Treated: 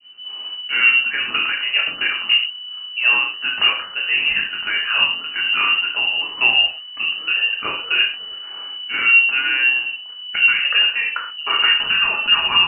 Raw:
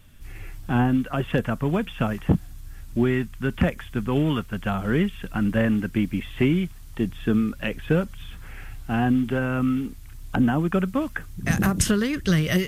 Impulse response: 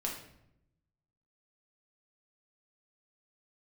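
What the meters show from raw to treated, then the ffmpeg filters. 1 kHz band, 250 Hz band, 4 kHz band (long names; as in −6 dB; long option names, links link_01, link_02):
+4.5 dB, −22.5 dB, +23.0 dB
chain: -filter_complex "[0:a]adynamicequalizer=threshold=0.01:dfrequency=1600:dqfactor=0.78:tfrequency=1600:tqfactor=0.78:attack=5:release=100:ratio=0.375:range=3:mode=boostabove:tftype=bell[link_01];[1:a]atrim=start_sample=2205,atrim=end_sample=6174[link_02];[link_01][link_02]afir=irnorm=-1:irlink=0,lowpass=frequency=2600:width_type=q:width=0.5098,lowpass=frequency=2600:width_type=q:width=0.6013,lowpass=frequency=2600:width_type=q:width=0.9,lowpass=frequency=2600:width_type=q:width=2.563,afreqshift=-3000"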